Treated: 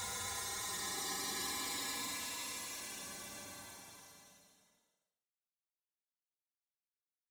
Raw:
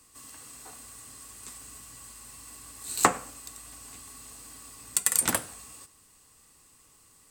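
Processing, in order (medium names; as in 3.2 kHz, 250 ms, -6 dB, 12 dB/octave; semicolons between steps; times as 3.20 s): backward echo that repeats 187 ms, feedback 56%, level -1 dB; treble shelf 12 kHz +3.5 dB; inharmonic resonator 110 Hz, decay 0.54 s, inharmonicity 0.002; feedback delay 1050 ms, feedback 20%, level -12 dB; spectral gate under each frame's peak -10 dB weak; granulator 233 ms, grains 2.5 per s, spray 128 ms, pitch spread up and down by 7 st; compressor with a negative ratio -59 dBFS, ratio -0.5; Paulstretch 36×, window 0.05 s, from 4.10 s; trim +15 dB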